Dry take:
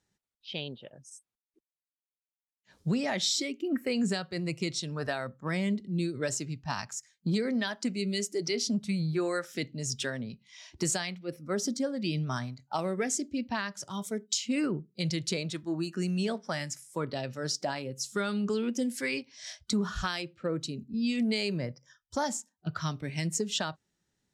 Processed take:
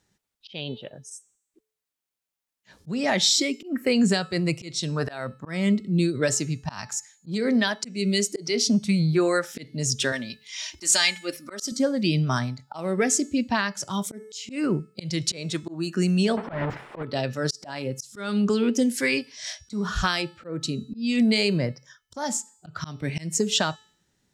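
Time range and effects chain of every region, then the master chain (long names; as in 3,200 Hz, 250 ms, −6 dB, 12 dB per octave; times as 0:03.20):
0:10.12–0:11.72: tilt shelving filter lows −8 dB, about 940 Hz + mains-hum notches 50/100/150 Hz + comb filter 3.3 ms, depth 59%
0:16.37–0:17.03: each half-wave held at its own peak + mid-hump overdrive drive 26 dB, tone 1,300 Hz, clips at −18.5 dBFS + high-frequency loss of the air 470 metres
whole clip: hum removal 434.1 Hz, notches 33; volume swells 235 ms; level +8.5 dB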